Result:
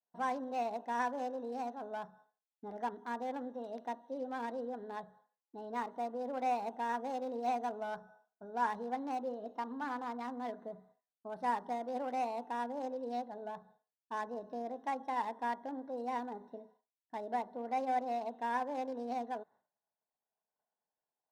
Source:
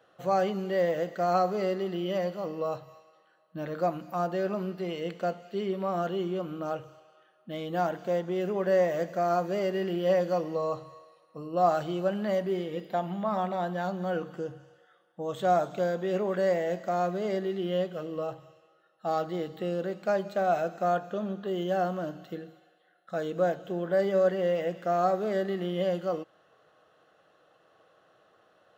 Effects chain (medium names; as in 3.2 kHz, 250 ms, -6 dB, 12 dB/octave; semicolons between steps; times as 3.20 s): local Wiener filter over 25 samples; speed mistake 33 rpm record played at 45 rpm; expander -52 dBFS; trim -8.5 dB